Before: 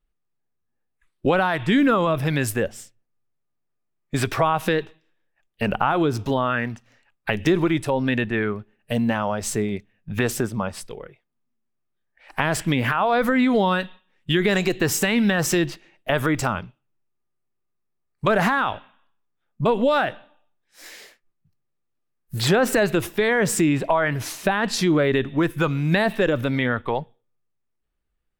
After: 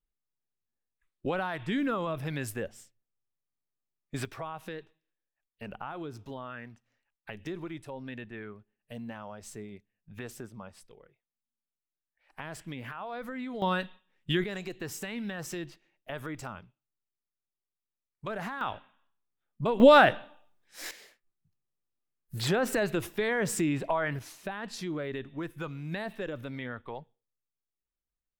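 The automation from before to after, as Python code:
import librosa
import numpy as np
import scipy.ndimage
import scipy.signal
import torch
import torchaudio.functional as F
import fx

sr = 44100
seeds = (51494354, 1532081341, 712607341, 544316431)

y = fx.gain(x, sr, db=fx.steps((0.0, -12.0), (4.25, -19.0), (13.62, -7.5), (14.44, -17.0), (18.61, -9.0), (19.8, 3.0), (20.91, -9.0), (24.19, -16.0)))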